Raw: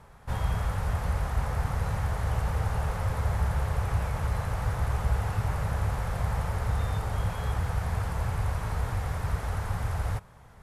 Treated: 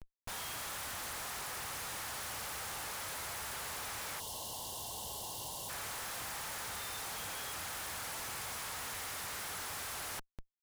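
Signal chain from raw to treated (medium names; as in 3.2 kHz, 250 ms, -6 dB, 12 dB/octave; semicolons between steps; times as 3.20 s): differentiator; Schmitt trigger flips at -57.5 dBFS; time-frequency box 4.20–5.70 s, 1.1–2.7 kHz -21 dB; trim +8.5 dB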